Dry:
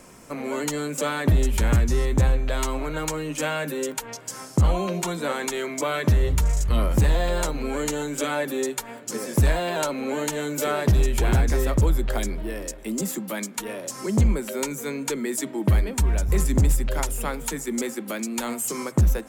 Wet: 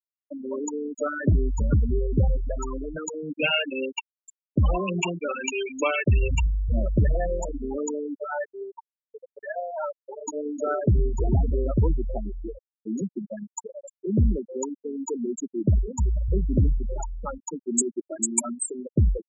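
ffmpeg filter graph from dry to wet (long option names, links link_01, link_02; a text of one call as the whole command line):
ffmpeg -i in.wav -filter_complex "[0:a]asettb=1/sr,asplit=3[link_01][link_02][link_03];[link_01]atrim=end=3.374[link_04];[link_02]atrim=start=3.37:end=6.46,asetpts=PTS-STARTPTS,afade=type=in:duration=0.004:curve=qsin,afade=type=out:start_time=3.086:duration=0.004:curve=qsin,agate=range=-33dB:threshold=-36dB:ratio=3:release=100:detection=peak,equalizer=frequency=2700:width_type=o:width=0.41:gain=14,aphaser=in_gain=1:out_gain=1:delay=3.8:decay=0.24:speed=1.2:type=sinusoidal[link_05];[link_03]atrim=start=6.456[link_06];[link_04][link_05]acrossfade=duration=0.004:curve1=hsin:curve2=qsin[link_07];[link_07][link_06]acrossfade=duration=0.004:curve1=qsin:curve2=hsin,asettb=1/sr,asplit=3[link_08][link_09][link_10];[link_08]atrim=end=8.174[link_11];[link_09]atrim=start=8.17:end=10.28,asetpts=PTS-STARTPTS,afade=type=in:duration=0.004:curve=qsin,afade=type=out:start_time=2.106:duration=0.004:curve=qsin,highpass=540,adynamicsmooth=sensitivity=7:basefreq=1200[link_12];[link_10]atrim=start=10.276[link_13];[link_11][link_12]acrossfade=duration=0.004:curve1=hsin:curve2=qsin[link_14];[link_14][link_13]acrossfade=duration=0.004:curve1=qsin:curve2=hsin,asettb=1/sr,asplit=3[link_15][link_16][link_17];[link_15]atrim=end=17.784[link_18];[link_16]atrim=start=17.78:end=18.52,asetpts=PTS-STARTPTS,afade=type=in:duration=0.004:curve=qsin,afade=type=out:start_time=0.736:duration=0.004:curve=qsin,aecho=1:1:3:0.54,atrim=end_sample=32634,aeval=exprs='sgn(val(0))*max(abs(val(0))-0.00335,0)':channel_layout=same,equalizer=frequency=9800:width=0.83:gain=9[link_19];[link_17]atrim=start=18.516[link_20];[link_18][link_19]acrossfade=duration=0.004:curve1=hsin:curve2=qsin[link_21];[link_21][link_20]acrossfade=duration=0.004:curve1=qsin:curve2=hsin,highpass=frequency=47:poles=1,afftfilt=real='re*gte(hypot(re,im),0.178)':imag='im*gte(hypot(re,im),0.178)':win_size=1024:overlap=0.75,highshelf=frequency=4400:gain=7.5" out.wav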